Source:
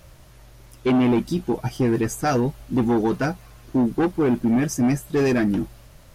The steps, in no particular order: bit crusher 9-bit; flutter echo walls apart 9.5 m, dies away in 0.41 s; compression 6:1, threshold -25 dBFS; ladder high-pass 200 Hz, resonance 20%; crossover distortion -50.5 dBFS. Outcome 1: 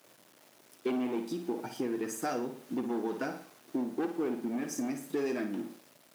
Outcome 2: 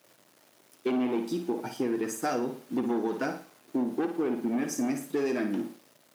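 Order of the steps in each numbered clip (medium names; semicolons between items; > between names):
flutter echo > compression > crossover distortion > bit crusher > ladder high-pass; flutter echo > bit crusher > crossover distortion > ladder high-pass > compression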